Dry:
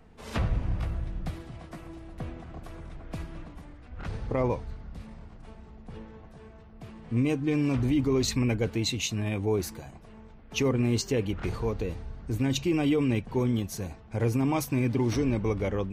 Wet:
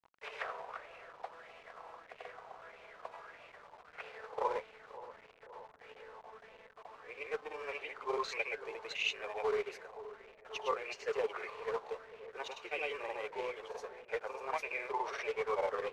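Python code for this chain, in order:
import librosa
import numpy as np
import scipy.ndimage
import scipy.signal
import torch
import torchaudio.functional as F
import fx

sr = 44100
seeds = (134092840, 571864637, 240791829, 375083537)

y = scipy.signal.sosfilt(scipy.signal.cheby1(6, 1.0, 420.0, 'highpass', fs=sr, output='sos'), x)
y = fx.granulator(y, sr, seeds[0], grain_ms=100.0, per_s=20.0, spray_ms=100.0, spread_st=0)
y = fx.quant_companded(y, sr, bits=4)
y = fx.spacing_loss(y, sr, db_at_10k=21)
y = fx.echo_wet_lowpass(y, sr, ms=524, feedback_pct=70, hz=850.0, wet_db=-15)
y = fx.bell_lfo(y, sr, hz=1.6, low_hz=880.0, high_hz=2600.0, db=13)
y = F.gain(torch.from_numpy(y), -3.5).numpy()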